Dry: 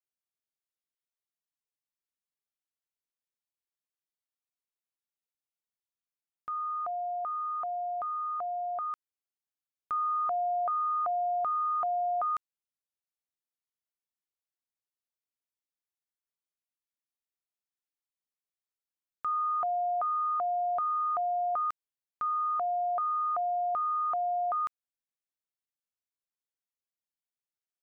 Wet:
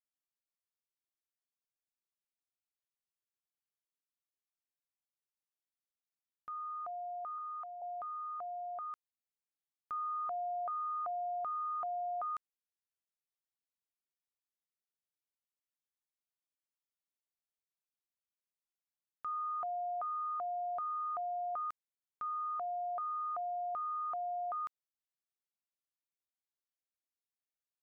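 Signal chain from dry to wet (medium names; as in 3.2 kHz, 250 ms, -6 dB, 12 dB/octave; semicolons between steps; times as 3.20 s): 7.38–7.82 s: high-pass 830 Hz 12 dB/octave; trim -8 dB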